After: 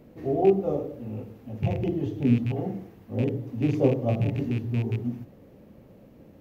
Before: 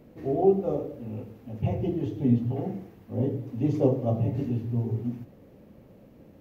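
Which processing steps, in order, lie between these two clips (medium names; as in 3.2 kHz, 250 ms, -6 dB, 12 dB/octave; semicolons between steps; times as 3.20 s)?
rattle on loud lows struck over -25 dBFS, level -31 dBFS; trim +1 dB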